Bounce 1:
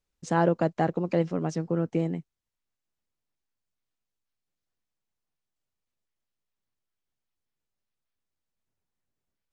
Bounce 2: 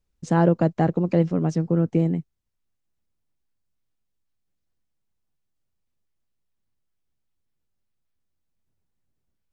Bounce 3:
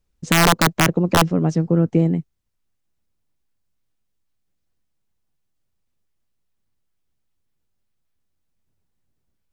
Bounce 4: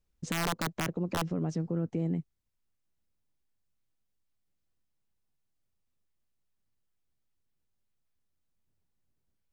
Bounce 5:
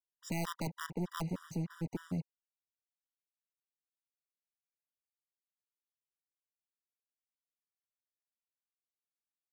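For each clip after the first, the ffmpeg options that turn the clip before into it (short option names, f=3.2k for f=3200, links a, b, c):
-af "lowshelf=f=310:g=10.5"
-af "aeval=exprs='(mod(2.99*val(0)+1,2)-1)/2.99':c=same,volume=4dB"
-af "alimiter=limit=-16dB:level=0:latency=1:release=131,volume=-6.5dB"
-af "acrusher=bits=7:mix=0:aa=0.5,aeval=exprs='0.0794*(cos(1*acos(clip(val(0)/0.0794,-1,1)))-cos(1*PI/2))+0.0126*(cos(5*acos(clip(val(0)/0.0794,-1,1)))-cos(5*PI/2))':c=same,afftfilt=real='re*gt(sin(2*PI*3.3*pts/sr)*(1-2*mod(floor(b*sr/1024/970),2)),0)':imag='im*gt(sin(2*PI*3.3*pts/sr)*(1-2*mod(floor(b*sr/1024/970),2)),0)':win_size=1024:overlap=0.75,volume=-4.5dB"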